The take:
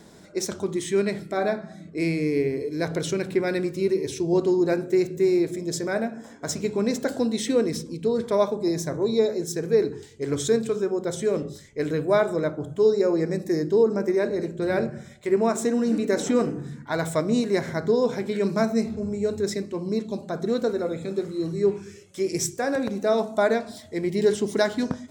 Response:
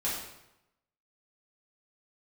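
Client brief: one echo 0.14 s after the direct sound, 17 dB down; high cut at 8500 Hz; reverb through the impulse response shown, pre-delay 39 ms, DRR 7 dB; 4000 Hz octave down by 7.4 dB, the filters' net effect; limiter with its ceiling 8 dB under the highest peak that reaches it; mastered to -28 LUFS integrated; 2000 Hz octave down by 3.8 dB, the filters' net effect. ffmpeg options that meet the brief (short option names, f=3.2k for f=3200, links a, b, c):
-filter_complex "[0:a]lowpass=8.5k,equalizer=f=2k:t=o:g=-3.5,equalizer=f=4k:t=o:g=-8.5,alimiter=limit=-17.5dB:level=0:latency=1,aecho=1:1:140:0.141,asplit=2[a][b];[1:a]atrim=start_sample=2205,adelay=39[c];[b][c]afir=irnorm=-1:irlink=0,volume=-13.5dB[d];[a][d]amix=inputs=2:normalize=0,volume=-1dB"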